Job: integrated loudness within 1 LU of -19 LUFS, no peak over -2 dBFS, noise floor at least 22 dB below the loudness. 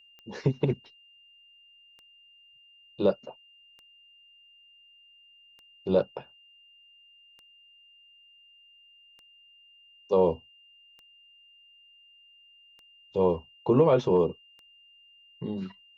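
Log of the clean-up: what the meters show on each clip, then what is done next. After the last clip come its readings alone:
clicks 9; steady tone 2800 Hz; tone level -55 dBFS; loudness -27.0 LUFS; peak -10.5 dBFS; loudness target -19.0 LUFS
-> de-click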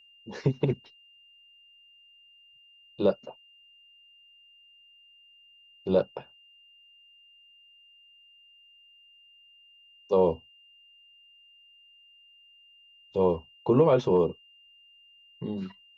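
clicks 0; steady tone 2800 Hz; tone level -55 dBFS
-> notch 2800 Hz, Q 30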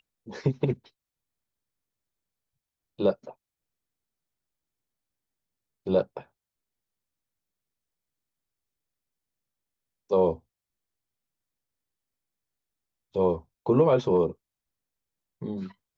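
steady tone none; loudness -27.0 LUFS; peak -10.5 dBFS; loudness target -19.0 LUFS
-> gain +8 dB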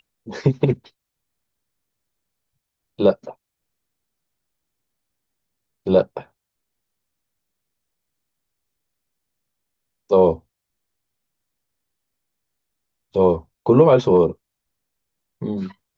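loudness -19.0 LUFS; peak -2.5 dBFS; noise floor -81 dBFS

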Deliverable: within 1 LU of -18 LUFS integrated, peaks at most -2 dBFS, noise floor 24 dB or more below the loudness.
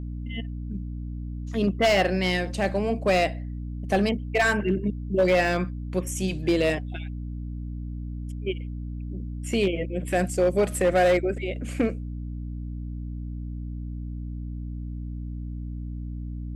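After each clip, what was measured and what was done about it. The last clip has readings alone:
clipped 0.8%; flat tops at -15.0 dBFS; hum 60 Hz; harmonics up to 300 Hz; hum level -31 dBFS; loudness -27.0 LUFS; peak -15.0 dBFS; loudness target -18.0 LUFS
-> clip repair -15 dBFS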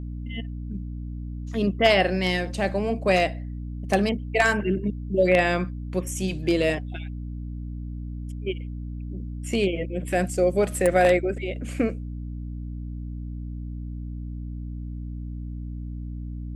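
clipped 0.0%; hum 60 Hz; harmonics up to 300 Hz; hum level -30 dBFS
-> notches 60/120/180/240/300 Hz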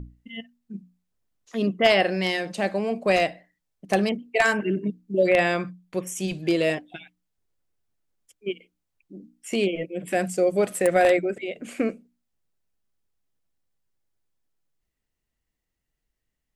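hum none; loudness -24.0 LUFS; peak -5.5 dBFS; loudness target -18.0 LUFS
-> gain +6 dB; limiter -2 dBFS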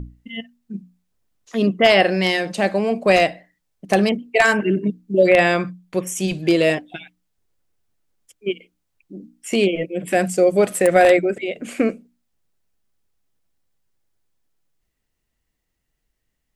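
loudness -18.5 LUFS; peak -2.0 dBFS; noise floor -75 dBFS

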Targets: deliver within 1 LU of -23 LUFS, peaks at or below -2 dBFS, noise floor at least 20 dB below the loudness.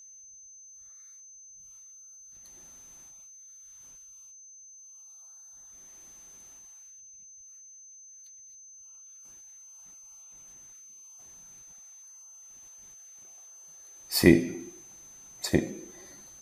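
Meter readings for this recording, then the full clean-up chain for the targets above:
steady tone 6200 Hz; tone level -48 dBFS; loudness -26.0 LUFS; peak -3.0 dBFS; loudness target -23.0 LUFS
-> notch 6200 Hz, Q 30; gain +3 dB; limiter -2 dBFS

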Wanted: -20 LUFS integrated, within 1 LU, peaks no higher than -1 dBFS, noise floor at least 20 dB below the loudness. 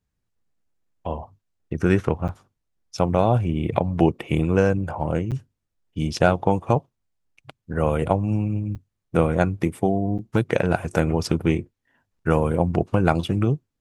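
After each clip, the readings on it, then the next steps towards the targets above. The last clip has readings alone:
dropouts 4; longest dropout 7.9 ms; loudness -23.0 LUFS; peak -2.5 dBFS; loudness target -20.0 LUFS
-> interpolate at 2.28/5.31/8.75/10.18, 7.9 ms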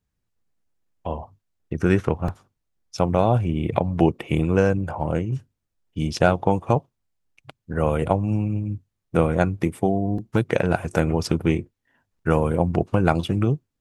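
dropouts 0; loudness -23.0 LUFS; peak -2.5 dBFS; loudness target -20.0 LUFS
-> gain +3 dB; limiter -1 dBFS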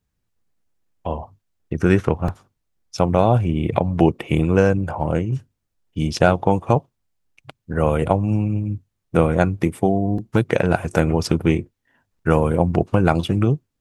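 loudness -20.0 LUFS; peak -1.0 dBFS; noise floor -76 dBFS

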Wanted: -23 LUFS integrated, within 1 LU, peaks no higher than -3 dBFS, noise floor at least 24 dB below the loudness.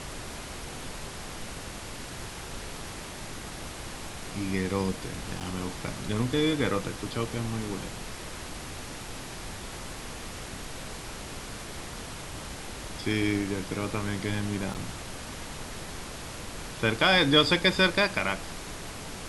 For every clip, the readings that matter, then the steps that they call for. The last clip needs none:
dropouts 2; longest dropout 7.9 ms; noise floor -40 dBFS; noise floor target -55 dBFS; loudness -31.0 LUFS; peak -8.5 dBFS; loudness target -23.0 LUFS
-> interpolate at 5.4/14.74, 7.9 ms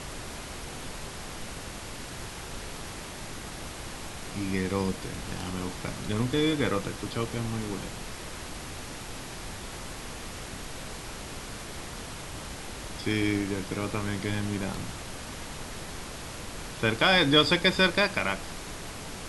dropouts 0; noise floor -40 dBFS; noise floor target -55 dBFS
-> noise print and reduce 15 dB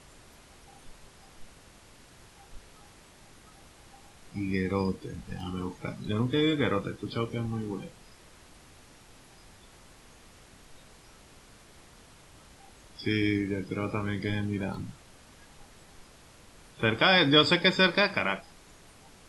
noise floor -55 dBFS; loudness -27.5 LUFS; peak -8.0 dBFS; loudness target -23.0 LUFS
-> gain +4.5 dB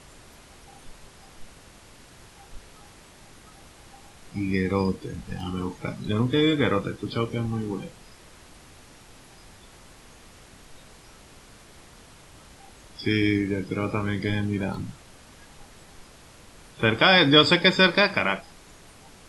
loudness -23.0 LUFS; peak -3.5 dBFS; noise floor -51 dBFS

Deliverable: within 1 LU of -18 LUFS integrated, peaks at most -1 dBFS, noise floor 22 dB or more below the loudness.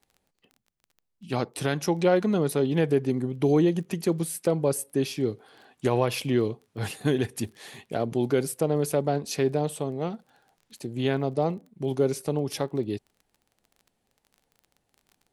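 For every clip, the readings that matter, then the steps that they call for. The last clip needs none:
ticks 24/s; loudness -27.0 LUFS; peak -11.0 dBFS; loudness target -18.0 LUFS
-> de-click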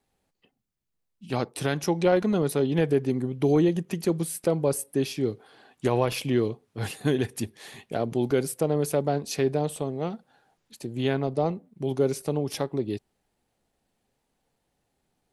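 ticks 0/s; loudness -27.0 LUFS; peak -11.0 dBFS; loudness target -18.0 LUFS
-> gain +9 dB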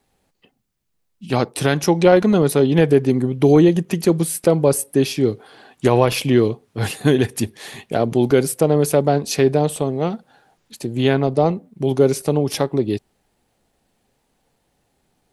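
loudness -18.0 LUFS; peak -2.0 dBFS; noise floor -69 dBFS

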